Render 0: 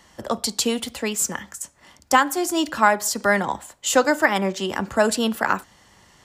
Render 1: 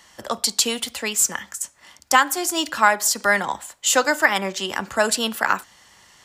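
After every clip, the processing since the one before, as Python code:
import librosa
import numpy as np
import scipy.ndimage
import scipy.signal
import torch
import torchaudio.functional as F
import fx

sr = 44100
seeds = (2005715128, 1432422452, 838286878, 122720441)

y = fx.tilt_shelf(x, sr, db=-5.5, hz=750.0)
y = F.gain(torch.from_numpy(y), -1.0).numpy()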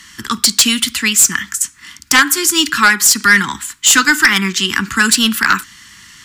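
y = scipy.signal.sosfilt(scipy.signal.cheby1(2, 1.0, [270.0, 1400.0], 'bandstop', fs=sr, output='sos'), x)
y = fx.fold_sine(y, sr, drive_db=10, ceiling_db=-2.0)
y = F.gain(torch.from_numpy(y), -1.0).numpy()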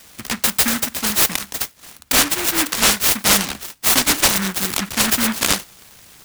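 y = fx.noise_mod_delay(x, sr, seeds[0], noise_hz=1500.0, depth_ms=0.4)
y = F.gain(torch.from_numpy(y), -5.0).numpy()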